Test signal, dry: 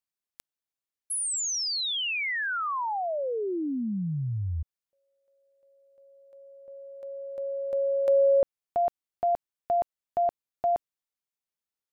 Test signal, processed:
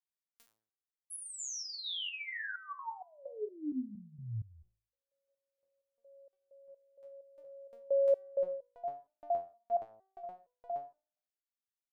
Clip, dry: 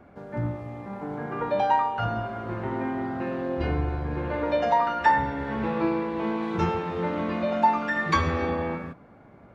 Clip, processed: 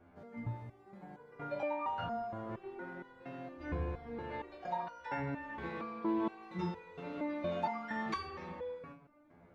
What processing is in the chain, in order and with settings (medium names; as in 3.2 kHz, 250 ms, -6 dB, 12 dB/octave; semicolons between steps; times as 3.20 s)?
de-hum 54.87 Hz, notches 35; resonator arpeggio 4.3 Hz 86–490 Hz